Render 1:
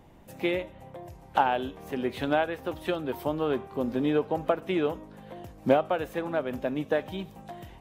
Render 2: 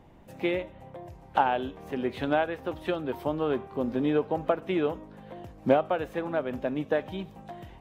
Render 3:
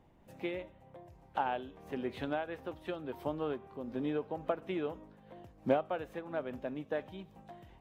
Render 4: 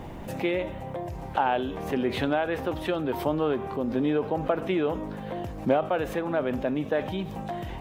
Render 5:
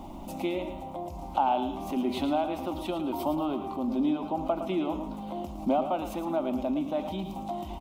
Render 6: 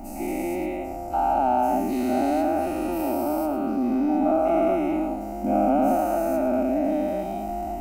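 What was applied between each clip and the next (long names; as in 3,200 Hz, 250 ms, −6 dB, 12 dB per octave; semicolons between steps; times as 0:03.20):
high-shelf EQ 5,800 Hz −9.5 dB
amplitude modulation by smooth noise, depth 60%; level −6 dB
envelope flattener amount 50%; level +5 dB
phaser with its sweep stopped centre 460 Hz, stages 6; repeating echo 111 ms, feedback 35%, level −9.5 dB
every bin's largest magnitude spread in time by 480 ms; phaser with its sweep stopped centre 690 Hz, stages 8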